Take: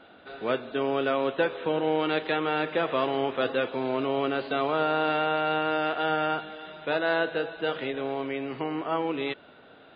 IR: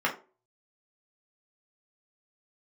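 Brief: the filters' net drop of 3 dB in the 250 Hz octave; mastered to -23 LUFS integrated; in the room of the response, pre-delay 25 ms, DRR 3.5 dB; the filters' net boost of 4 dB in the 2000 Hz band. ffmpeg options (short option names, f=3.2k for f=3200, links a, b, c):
-filter_complex "[0:a]equalizer=f=250:t=o:g=-4,equalizer=f=2k:t=o:g=6,asplit=2[a][b];[1:a]atrim=start_sample=2205,adelay=25[c];[b][c]afir=irnorm=-1:irlink=0,volume=-15.5dB[d];[a][d]amix=inputs=2:normalize=0,volume=2.5dB"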